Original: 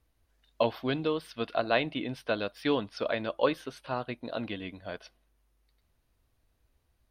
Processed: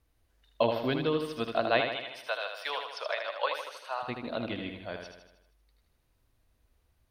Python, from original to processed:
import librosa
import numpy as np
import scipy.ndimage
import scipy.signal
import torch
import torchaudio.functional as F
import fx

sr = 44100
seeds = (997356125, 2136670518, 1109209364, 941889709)

y = fx.cheby2_highpass(x, sr, hz=190.0, order=4, stop_db=60, at=(1.8, 4.02), fade=0.02)
y = fx.echo_feedback(y, sr, ms=78, feedback_pct=55, wet_db=-6)